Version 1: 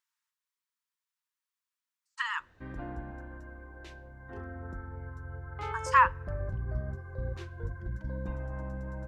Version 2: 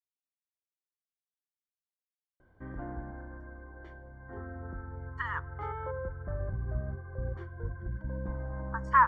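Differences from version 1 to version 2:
speech: entry +3.00 s; master: add Savitzky-Golay filter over 41 samples

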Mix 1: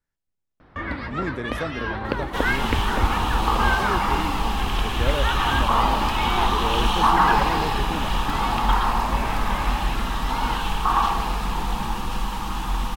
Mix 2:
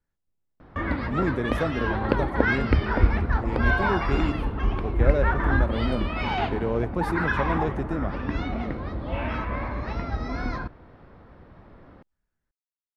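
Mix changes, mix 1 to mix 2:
second sound: muted; master: add tilt shelf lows +4 dB, about 1.3 kHz

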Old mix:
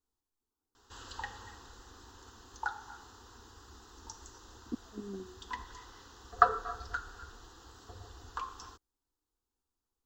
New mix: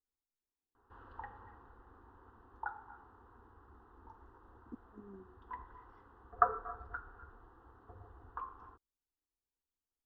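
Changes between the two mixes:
speech -10.5 dB; background: add four-pole ladder low-pass 1.7 kHz, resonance 20%

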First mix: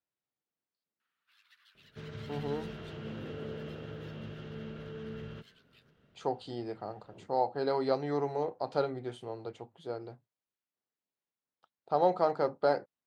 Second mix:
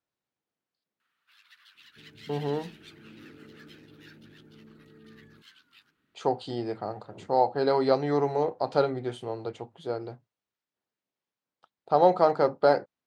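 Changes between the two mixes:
speech +6.5 dB; first sound +7.0 dB; second sound: add cascade formant filter u

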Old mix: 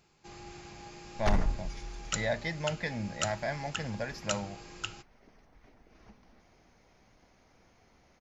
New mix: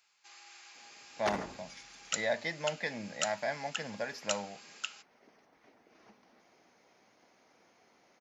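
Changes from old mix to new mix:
first sound: add high-pass 1.4 kHz 12 dB/octave; master: add high-pass 270 Hz 12 dB/octave

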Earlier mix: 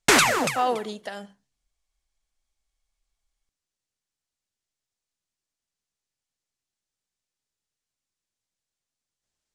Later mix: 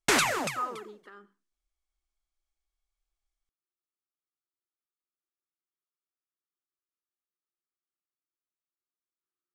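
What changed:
speech: add two resonant band-passes 660 Hz, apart 1.8 oct; background -6.5 dB

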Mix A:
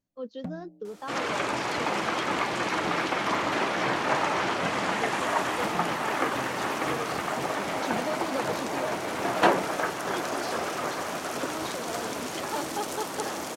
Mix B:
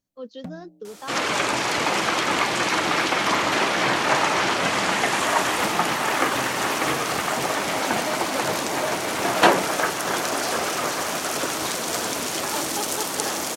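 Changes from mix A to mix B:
second sound +4.0 dB; master: add treble shelf 2.7 kHz +8.5 dB

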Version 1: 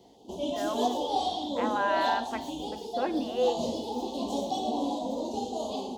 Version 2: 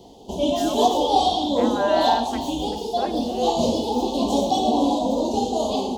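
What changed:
background +10.0 dB; master: remove high-pass 100 Hz 6 dB/octave

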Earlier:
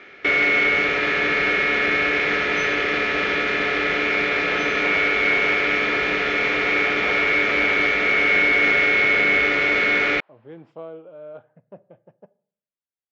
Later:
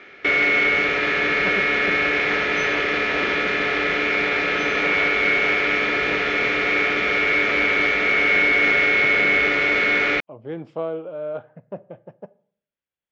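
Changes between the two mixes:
speech +9.5 dB; second sound: entry -2.20 s

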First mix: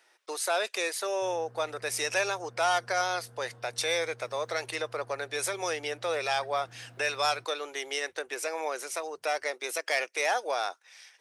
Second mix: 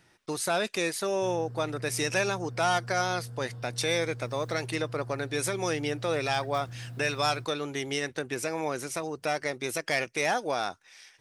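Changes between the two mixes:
speech: remove high-pass 440 Hz 24 dB/octave; background: add tone controls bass +14 dB, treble +14 dB

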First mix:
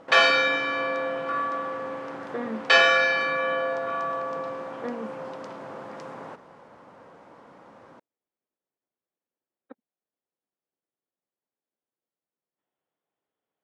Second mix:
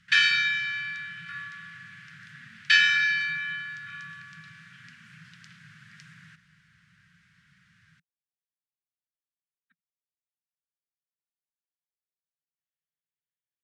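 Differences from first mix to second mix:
speech -7.5 dB; master: add Chebyshev band-stop 170–1600 Hz, order 4

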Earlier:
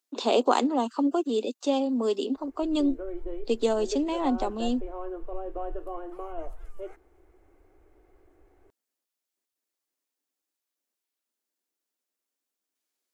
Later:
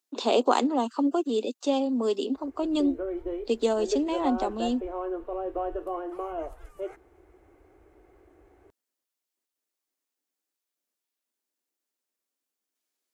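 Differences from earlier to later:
background +4.5 dB; master: add high-pass 49 Hz 12 dB/octave

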